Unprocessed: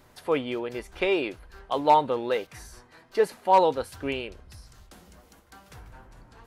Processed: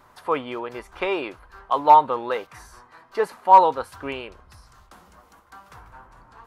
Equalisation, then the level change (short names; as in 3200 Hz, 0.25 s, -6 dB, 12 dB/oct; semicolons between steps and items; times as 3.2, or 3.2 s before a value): bell 1100 Hz +13.5 dB 1.1 oct; -3.0 dB